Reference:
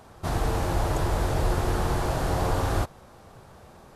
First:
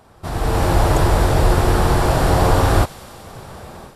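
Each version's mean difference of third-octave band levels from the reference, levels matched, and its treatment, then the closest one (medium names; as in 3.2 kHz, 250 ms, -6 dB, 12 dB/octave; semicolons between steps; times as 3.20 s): 2.0 dB: band-stop 6.4 kHz, Q 12; level rider gain up to 14 dB; feedback echo behind a high-pass 94 ms, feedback 84%, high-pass 2.8 kHz, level -16.5 dB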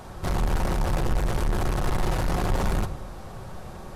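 4.5 dB: bass shelf 73 Hz +10.5 dB; saturation -30 dBFS, distortion -5 dB; simulated room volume 2000 m³, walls furnished, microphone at 0.99 m; trim +7 dB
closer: first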